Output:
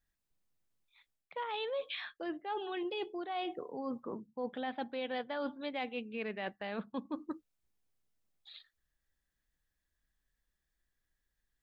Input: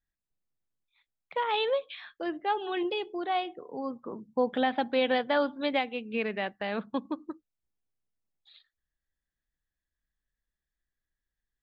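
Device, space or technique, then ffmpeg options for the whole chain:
compression on the reversed sound: -af "areverse,acompressor=threshold=-40dB:ratio=6,areverse,volume=4dB"

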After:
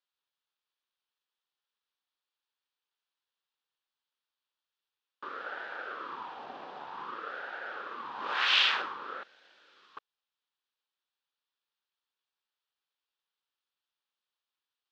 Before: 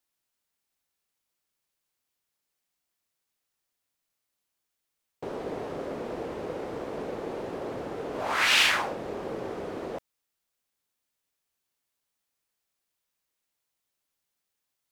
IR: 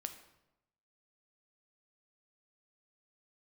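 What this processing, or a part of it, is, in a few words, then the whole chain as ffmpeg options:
voice changer toy: -filter_complex "[0:a]asettb=1/sr,asplit=3[link_01][link_02][link_03];[link_01]atrim=end=9.234[link_04];[link_02]atrim=start=9.23:end=9.97,asetpts=PTS-STARTPTS,afade=type=in:duration=0.004:curve=qsin,afade=type=out:start_time=0.736:duration=0.004:curve=qsin,aderivative[link_05];[link_03]atrim=start=9.966[link_06];[link_04][link_05]acrossfade=duration=0.004:curve1=hsin:curve2=qsin[link_07];[link_07][link_06]acrossfade=duration=0.004:curve1=qsin:curve2=hsin,aeval=exprs='val(0)*sin(2*PI*660*n/s+660*0.65/0.53*sin(2*PI*0.53*n/s))':channel_layout=same,highpass=590,equalizer=frequency=660:width_type=q:width=4:gain=-9,equalizer=frequency=2100:width_type=q:width=4:gain=-8,equalizer=frequency=3400:width_type=q:width=4:gain=3,lowpass=frequency=4300:width=0.5412,lowpass=frequency=4300:width=1.3066,volume=1dB"

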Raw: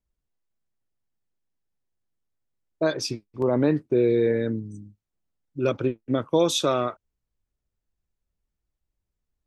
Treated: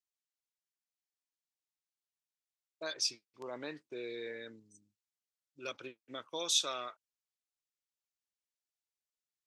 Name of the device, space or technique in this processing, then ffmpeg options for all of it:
piezo pickup straight into a mixer: -af "lowpass=6200,aderivative,volume=2.5dB"

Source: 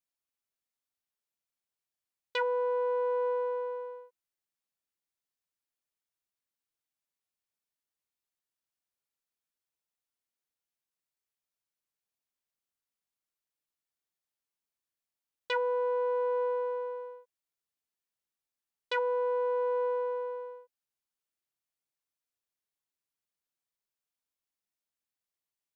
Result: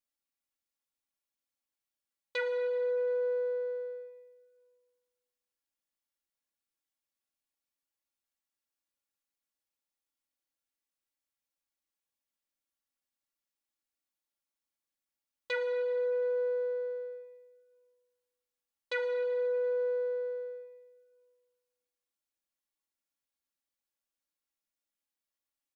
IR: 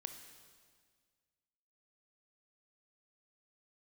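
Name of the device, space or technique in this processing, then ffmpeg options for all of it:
stairwell: -filter_complex "[0:a]aecho=1:1:3.6:0.87[link_01];[1:a]atrim=start_sample=2205[link_02];[link_01][link_02]afir=irnorm=-1:irlink=0"

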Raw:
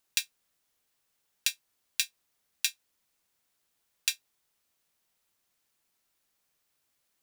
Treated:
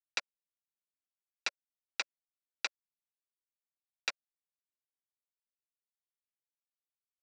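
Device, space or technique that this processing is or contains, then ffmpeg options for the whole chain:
hand-held game console: -af "acrusher=bits=3:mix=0:aa=0.000001,highpass=480,equalizer=frequency=570:width_type=q:width=4:gain=7,equalizer=frequency=1400:width_type=q:width=4:gain=8,equalizer=frequency=2200:width_type=q:width=4:gain=7,equalizer=frequency=3300:width_type=q:width=4:gain=-7,lowpass=frequency=4900:width=0.5412,lowpass=frequency=4900:width=1.3066,volume=-3.5dB"

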